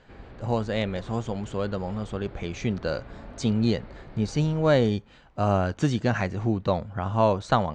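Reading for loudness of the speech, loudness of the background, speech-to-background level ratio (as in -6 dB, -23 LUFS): -26.5 LUFS, -46.0 LUFS, 19.5 dB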